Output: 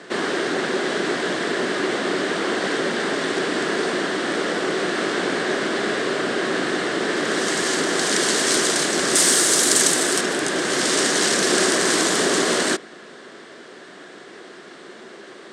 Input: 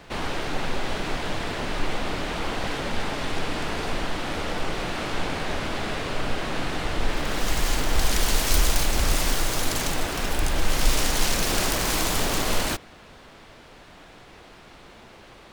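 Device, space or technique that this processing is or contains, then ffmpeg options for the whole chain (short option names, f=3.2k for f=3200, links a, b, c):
television speaker: -filter_complex "[0:a]highpass=f=190:w=0.5412,highpass=f=190:w=1.3066,equalizer=f=380:t=q:w=4:g=9,equalizer=f=870:t=q:w=4:g=-7,equalizer=f=1.7k:t=q:w=4:g=6,equalizer=f=2.5k:t=q:w=4:g=-6,equalizer=f=8.4k:t=q:w=4:g=6,lowpass=f=8.8k:w=0.5412,lowpass=f=8.8k:w=1.3066,asettb=1/sr,asplit=3[a][b][c];[a]atrim=end=9.154[d];[b]atrim=start=9.15:end=10.21,asetpts=PTS-STARTPTS,afade=t=in:d=0.004:c=qsin,afade=t=out:st=1.056:d=0.004:c=qsin,aemphasis=mode=production:type=50fm[e];[c]atrim=start=10.206[f];[d][e]acrossfade=d=0.004:c1=hsin:c2=qsin[g];[g][f]acrossfade=d=0.004:c1=qsin:c2=hsin,volume=6dB"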